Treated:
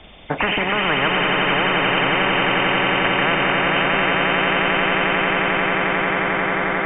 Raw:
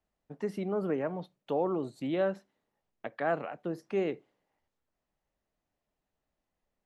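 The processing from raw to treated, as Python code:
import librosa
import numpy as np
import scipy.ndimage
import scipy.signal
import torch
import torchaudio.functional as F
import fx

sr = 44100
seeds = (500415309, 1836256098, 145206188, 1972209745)

y = fx.freq_compress(x, sr, knee_hz=2000.0, ratio=4.0)
y = fx.echo_swell(y, sr, ms=89, loudest=8, wet_db=-8)
y = fx.spectral_comp(y, sr, ratio=10.0)
y = y * librosa.db_to_amplitude(8.0)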